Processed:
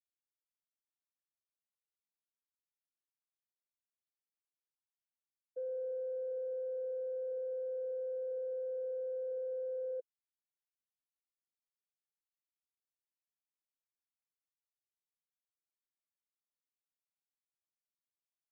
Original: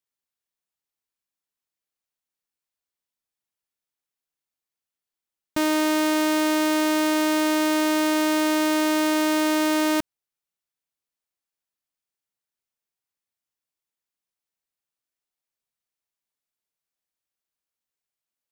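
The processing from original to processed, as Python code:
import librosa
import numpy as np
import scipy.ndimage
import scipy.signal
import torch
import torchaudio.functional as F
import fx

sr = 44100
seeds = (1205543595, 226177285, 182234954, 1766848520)

y = fx.sine_speech(x, sr)
y = fx.power_curve(y, sr, exponent=3.0)
y = fx.ladder_lowpass(y, sr, hz=490.0, resonance_pct=35)
y = y * librosa.db_to_amplitude(-2.5)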